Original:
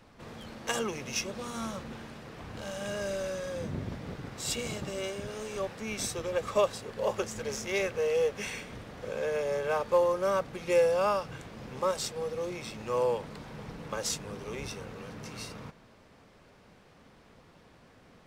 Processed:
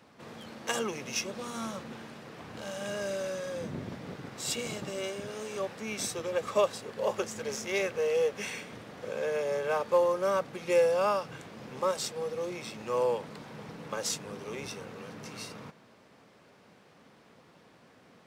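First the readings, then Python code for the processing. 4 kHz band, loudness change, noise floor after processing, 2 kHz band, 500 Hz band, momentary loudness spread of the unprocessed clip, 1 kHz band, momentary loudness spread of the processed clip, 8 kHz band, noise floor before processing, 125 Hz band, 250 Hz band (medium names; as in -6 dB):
0.0 dB, 0.0 dB, -59 dBFS, 0.0 dB, 0.0 dB, 16 LU, 0.0 dB, 17 LU, 0.0 dB, -58 dBFS, -3.5 dB, -0.5 dB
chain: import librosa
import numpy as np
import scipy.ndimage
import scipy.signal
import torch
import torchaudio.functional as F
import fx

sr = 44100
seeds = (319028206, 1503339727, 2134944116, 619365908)

y = scipy.signal.sosfilt(scipy.signal.butter(2, 140.0, 'highpass', fs=sr, output='sos'), x)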